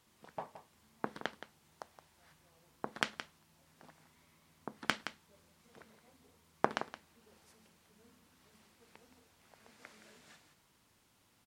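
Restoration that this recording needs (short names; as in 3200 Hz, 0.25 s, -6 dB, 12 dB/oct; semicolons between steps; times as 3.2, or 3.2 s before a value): clip repair -10 dBFS; inverse comb 0.17 s -12 dB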